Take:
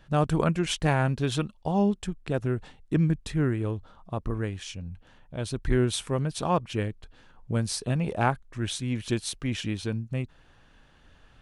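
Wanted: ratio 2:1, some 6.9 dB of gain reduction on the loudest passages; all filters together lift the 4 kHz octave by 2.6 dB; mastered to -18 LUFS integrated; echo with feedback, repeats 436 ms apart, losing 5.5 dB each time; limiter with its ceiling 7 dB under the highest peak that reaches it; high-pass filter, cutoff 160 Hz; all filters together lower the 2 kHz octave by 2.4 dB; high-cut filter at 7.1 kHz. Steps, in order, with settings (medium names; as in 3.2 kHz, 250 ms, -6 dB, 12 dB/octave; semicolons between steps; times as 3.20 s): high-pass 160 Hz; low-pass 7.1 kHz; peaking EQ 2 kHz -4.5 dB; peaking EQ 4 kHz +5 dB; compression 2:1, threshold -32 dBFS; peak limiter -23.5 dBFS; feedback delay 436 ms, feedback 53%, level -5.5 dB; trim +17 dB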